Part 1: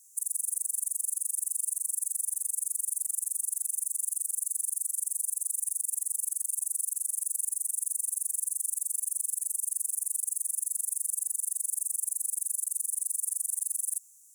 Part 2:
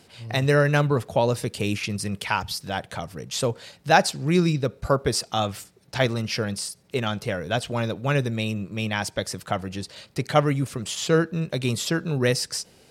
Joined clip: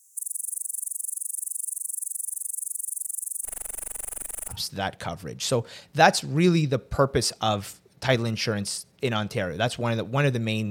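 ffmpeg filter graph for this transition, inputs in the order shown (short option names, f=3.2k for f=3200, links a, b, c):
-filter_complex "[0:a]asplit=3[a][b][c];[a]afade=t=out:st=3.44:d=0.02[d];[b]aeval=exprs='if(lt(val(0),0),0.447*val(0),val(0))':c=same,afade=t=in:st=3.44:d=0.02,afade=t=out:st=4.56:d=0.02[e];[c]afade=t=in:st=4.56:d=0.02[f];[d][e][f]amix=inputs=3:normalize=0,apad=whole_dur=10.7,atrim=end=10.7,atrim=end=4.56,asetpts=PTS-STARTPTS[g];[1:a]atrim=start=2.39:end=8.61,asetpts=PTS-STARTPTS[h];[g][h]acrossfade=d=0.08:c1=tri:c2=tri"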